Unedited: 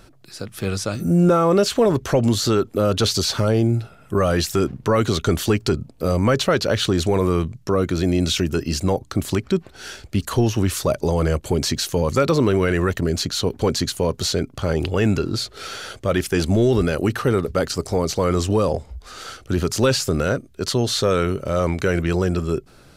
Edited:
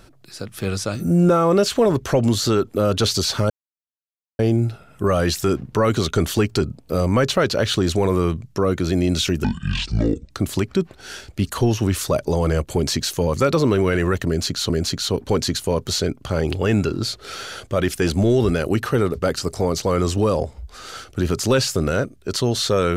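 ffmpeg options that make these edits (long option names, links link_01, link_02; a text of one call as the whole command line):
ffmpeg -i in.wav -filter_complex "[0:a]asplit=5[link_01][link_02][link_03][link_04][link_05];[link_01]atrim=end=3.5,asetpts=PTS-STARTPTS,afade=type=out:start_time=3.496:duration=0.004:curve=hsin,apad=pad_dur=0.89[link_06];[link_02]atrim=start=3.5:end=8.554,asetpts=PTS-STARTPTS,afade=type=in:duration=0.004:curve=hsin[link_07];[link_03]atrim=start=8.55:end=9.06,asetpts=PTS-STARTPTS,asetrate=26019,aresample=44100,atrim=end_sample=38120,asetpts=PTS-STARTPTS[link_08];[link_04]atrim=start=9.056:end=13.452[link_09];[link_05]atrim=start=13.018[link_10];[link_06][link_07]concat=n=2:v=0:a=1[link_11];[link_11][link_08]acrossfade=duration=0.004:curve1=hsin:curve2=hsin[link_12];[link_12][link_09]acrossfade=duration=0.004:curve1=hsin:curve2=hsin[link_13];[link_13][link_10]acrossfade=duration=0.004:curve1=hsin:curve2=hsin" out.wav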